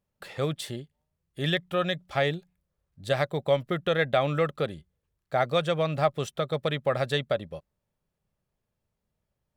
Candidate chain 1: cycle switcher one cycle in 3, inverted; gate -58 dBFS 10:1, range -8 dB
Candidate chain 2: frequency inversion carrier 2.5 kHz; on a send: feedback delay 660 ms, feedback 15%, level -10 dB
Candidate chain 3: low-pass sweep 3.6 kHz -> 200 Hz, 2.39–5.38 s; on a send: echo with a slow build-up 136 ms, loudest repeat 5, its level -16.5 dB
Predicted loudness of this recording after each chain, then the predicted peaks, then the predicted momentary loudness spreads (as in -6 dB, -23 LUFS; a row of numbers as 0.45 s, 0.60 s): -28.0 LUFS, -26.0 LUFS, -26.5 LUFS; -9.5 dBFS, -8.5 dBFS, -6.5 dBFS; 13 LU, 14 LU, 19 LU